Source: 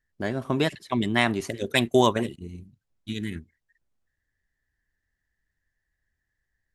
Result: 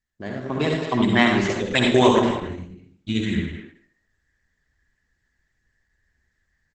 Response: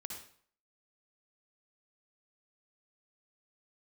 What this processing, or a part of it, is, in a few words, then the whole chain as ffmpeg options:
speakerphone in a meeting room: -filter_complex "[1:a]atrim=start_sample=2205[a];[0:a][a]afir=irnorm=-1:irlink=0,asplit=2[b][c];[c]adelay=210,highpass=300,lowpass=3.4k,asoftclip=type=hard:threshold=-19dB,volume=-9dB[d];[b][d]amix=inputs=2:normalize=0,dynaudnorm=f=450:g=3:m=12.5dB" -ar 48000 -c:a libopus -b:a 12k

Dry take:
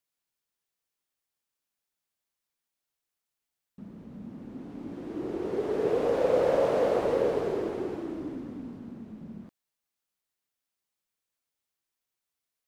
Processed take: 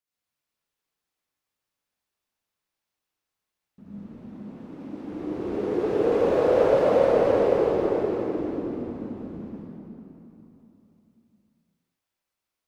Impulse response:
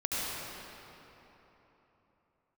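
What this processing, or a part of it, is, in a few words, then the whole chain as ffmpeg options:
swimming-pool hall: -filter_complex "[0:a]asettb=1/sr,asplit=3[a][b][c];[a]atrim=end=4.064[d];[b]atrim=start=4.06:end=5.03,asetpts=PTS-STARTPTS,afade=t=in:d=0.004:c=qsin,afade=t=out:st=0.966:d=0.004:c=qsin,highpass=f=240:p=1[e];[c]atrim=start=5.026[f];[d][e]acrossfade=d=0.004:c1=hsin:c2=qsin[g];[g][f]acrossfade=d=0.004:c1=qsin:c2=hsin[h];[1:a]atrim=start_sample=2205[i];[h][i]afir=irnorm=-1:irlink=0,highshelf=f=6k:g=-4,volume=-3dB"

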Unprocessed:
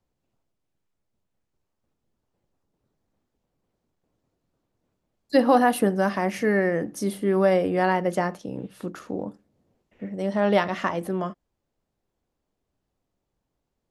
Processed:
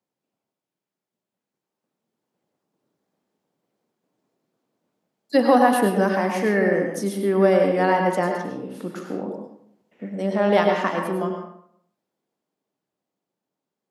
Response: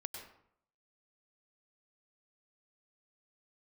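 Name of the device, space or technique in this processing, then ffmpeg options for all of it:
far laptop microphone: -filter_complex "[1:a]atrim=start_sample=2205[a];[0:a][a]afir=irnorm=-1:irlink=0,highpass=f=160:w=0.5412,highpass=f=160:w=1.3066,dynaudnorm=f=200:g=21:m=5.5dB"

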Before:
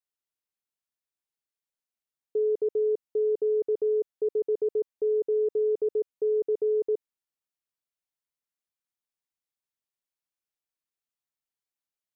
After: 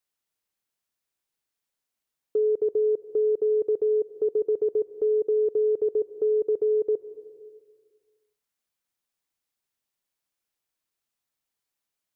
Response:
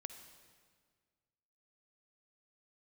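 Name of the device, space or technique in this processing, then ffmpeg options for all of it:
compressed reverb return: -filter_complex "[0:a]asplit=2[a][b];[1:a]atrim=start_sample=2205[c];[b][c]afir=irnorm=-1:irlink=0,acompressor=threshold=-40dB:ratio=6,volume=6dB[d];[a][d]amix=inputs=2:normalize=0"

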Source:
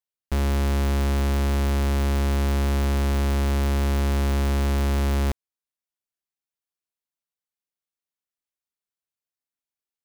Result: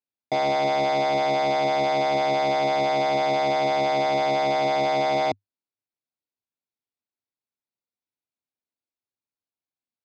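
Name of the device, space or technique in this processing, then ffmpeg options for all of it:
ring modulator pedal into a guitar cabinet: -af "aeval=exprs='val(0)*sgn(sin(2*PI*700*n/s))':c=same,highpass=100,equalizer=f=100:t=q:w=4:g=9,equalizer=f=250:t=q:w=4:g=6,equalizer=f=350:t=q:w=4:g=3,equalizer=f=1.2k:t=q:w=4:g=-5,equalizer=f=1.8k:t=q:w=4:g=-9,equalizer=f=3.1k:t=q:w=4:g=-8,lowpass=f=4.4k:w=0.5412,lowpass=f=4.4k:w=1.3066"

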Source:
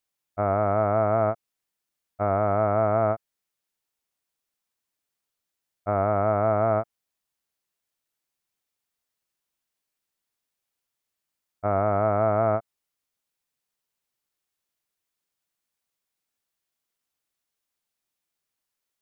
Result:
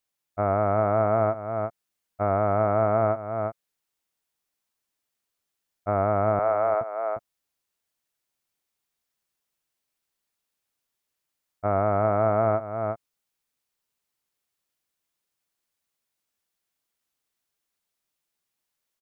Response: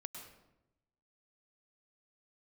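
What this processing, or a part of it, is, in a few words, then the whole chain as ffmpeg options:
ducked delay: -filter_complex "[0:a]asettb=1/sr,asplit=3[a][b][c];[a]atrim=end=6.394[d];[b]atrim=start=6.39:end=6.81,asetpts=PTS-STARTPTS,afade=t=in:d=0.004:c=qsin,afade=t=out:st=0.416:d=0.004:c=qsin,highpass=f=440:w=0.5412,highpass=f=440:w=1.3066[e];[c]atrim=start=6.806[f];[d][e]acrossfade=d=0.004:c1=hsin:c2=qsin[g];[g][f]acrossfade=d=0.004:c1=qsin:c2=hsin,asplit=3[h][i][j];[i]adelay=354,volume=-4dB[k];[j]apad=whole_len=853977[l];[k][l]sidechaincompress=threshold=-30dB:ratio=8:attack=10:release=329[m];[h][m]amix=inputs=2:normalize=0"

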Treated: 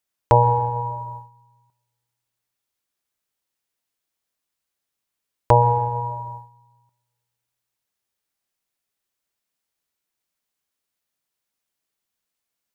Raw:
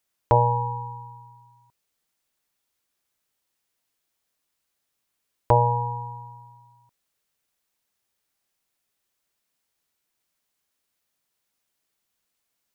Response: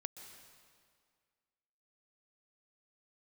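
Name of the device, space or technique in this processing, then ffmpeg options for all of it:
keyed gated reverb: -filter_complex "[0:a]asplit=3[a][b][c];[1:a]atrim=start_sample=2205[d];[b][d]afir=irnorm=-1:irlink=0[e];[c]apad=whole_len=562221[f];[e][f]sidechaingate=range=-23dB:threshold=-44dB:ratio=16:detection=peak,volume=8.5dB[g];[a][g]amix=inputs=2:normalize=0,volume=-5dB"

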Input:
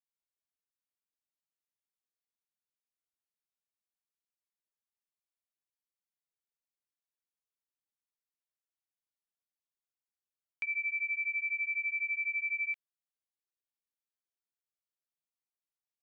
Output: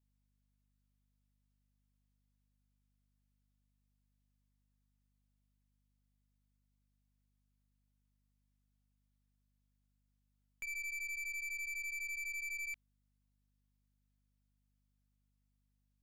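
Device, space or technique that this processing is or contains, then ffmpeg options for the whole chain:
valve amplifier with mains hum: -af "aeval=exprs='(tanh(112*val(0)+0.3)-tanh(0.3))/112':c=same,aeval=exprs='val(0)+0.000112*(sin(2*PI*50*n/s)+sin(2*PI*2*50*n/s)/2+sin(2*PI*3*50*n/s)/3+sin(2*PI*4*50*n/s)/4+sin(2*PI*5*50*n/s)/5)':c=same,volume=1dB"

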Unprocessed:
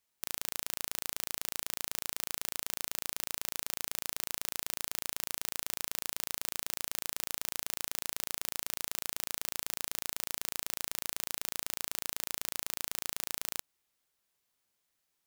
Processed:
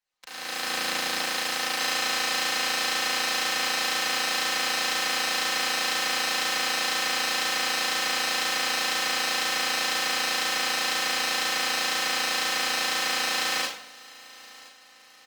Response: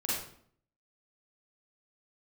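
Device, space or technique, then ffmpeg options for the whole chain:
far-field microphone of a smart speaker: -filter_complex "[0:a]asettb=1/sr,asplit=3[a][b][c];[a]atrim=end=0.634[d];[b]atrim=start=0.63:end=1.23,asetpts=PTS-STARTPTS,afade=t=in:d=0.004:c=qsin,afade=t=out:st=0.596:d=0.004:c=qsin,lowshelf=f=270:g=5[e];[c]atrim=start=1.226[f];[d][e]acrossfade=d=0.004:c1=hsin:c2=qsin[g];[g][f]acrossfade=d=0.004:c1=qsin:c2=hsin,acrossover=split=490 5800:gain=0.224 1 0.112[h][i][j];[h][i][j]amix=inputs=3:normalize=0,aecho=1:1:3.9:0.83,aecho=1:1:1022|2044|3066:0.0891|0.0428|0.0205[k];[1:a]atrim=start_sample=2205[l];[k][l]afir=irnorm=-1:irlink=0,highpass=f=100:w=0.5412,highpass=f=100:w=1.3066,dynaudnorm=f=110:g=9:m=16dB,volume=-5dB" -ar 48000 -c:a libopus -b:a 20k

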